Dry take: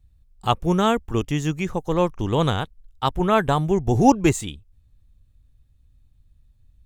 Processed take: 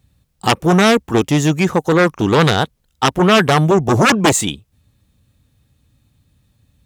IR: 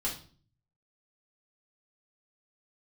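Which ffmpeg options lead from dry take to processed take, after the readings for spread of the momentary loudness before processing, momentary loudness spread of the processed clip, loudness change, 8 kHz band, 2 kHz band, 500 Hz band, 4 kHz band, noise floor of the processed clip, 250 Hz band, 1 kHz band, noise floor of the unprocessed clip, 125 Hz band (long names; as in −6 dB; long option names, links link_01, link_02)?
11 LU, 7 LU, +7.5 dB, +12.5 dB, +13.5 dB, +7.5 dB, +11.5 dB, −63 dBFS, +6.5 dB, +6.0 dB, −59 dBFS, +6.5 dB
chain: -af "aeval=exprs='0.794*sin(PI/2*5.01*val(0)/0.794)':channel_layout=same,highpass=150,volume=-4.5dB"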